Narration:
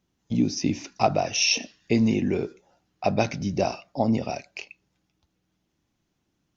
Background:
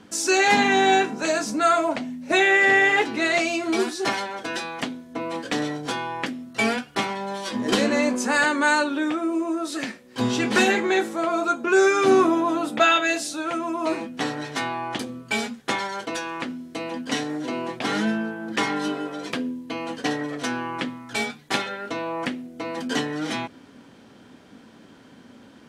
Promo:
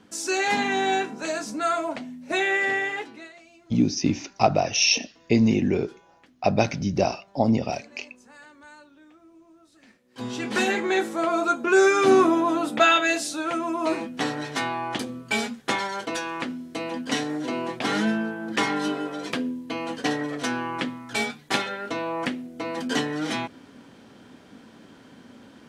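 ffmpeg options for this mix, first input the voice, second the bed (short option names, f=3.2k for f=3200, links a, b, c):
-filter_complex "[0:a]adelay=3400,volume=2dB[a];[1:a]volume=23dB,afade=t=out:st=2.55:d=0.79:silence=0.0707946,afade=t=in:st=9.82:d=1.4:silence=0.0375837[b];[a][b]amix=inputs=2:normalize=0"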